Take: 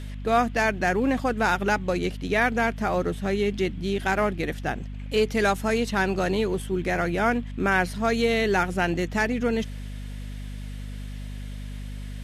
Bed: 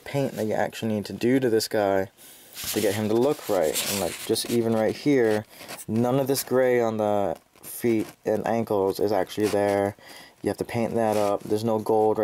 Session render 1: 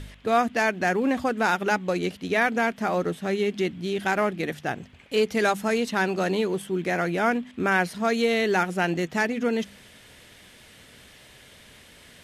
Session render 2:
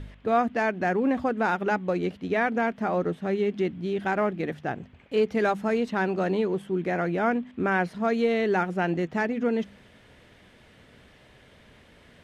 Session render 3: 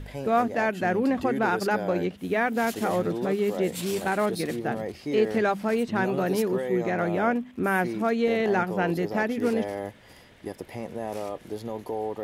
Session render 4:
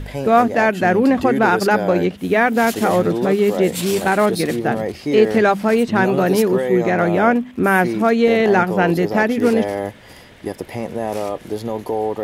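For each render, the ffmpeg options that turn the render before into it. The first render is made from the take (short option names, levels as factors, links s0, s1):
-af "bandreject=f=50:t=h:w=4,bandreject=f=100:t=h:w=4,bandreject=f=150:t=h:w=4,bandreject=f=200:t=h:w=4,bandreject=f=250:t=h:w=4"
-af "lowpass=f=1300:p=1"
-filter_complex "[1:a]volume=0.316[s0];[0:a][s0]amix=inputs=2:normalize=0"
-af "volume=2.99"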